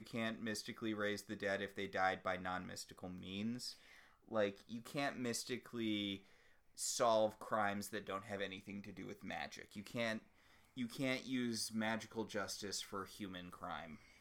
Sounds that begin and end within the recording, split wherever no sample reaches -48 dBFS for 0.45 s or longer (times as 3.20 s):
4.29–6.17 s
6.78–10.18 s